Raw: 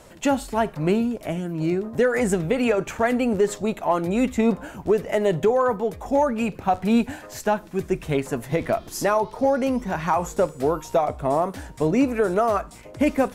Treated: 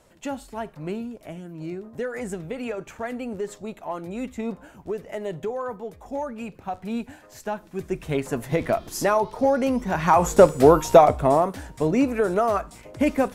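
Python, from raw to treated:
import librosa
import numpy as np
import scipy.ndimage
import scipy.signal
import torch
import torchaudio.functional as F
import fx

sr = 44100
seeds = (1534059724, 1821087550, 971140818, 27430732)

y = fx.gain(x, sr, db=fx.line((7.24, -10.0), (8.39, 0.0), (9.82, 0.0), (10.42, 8.5), (11.0, 8.5), (11.58, -1.0)))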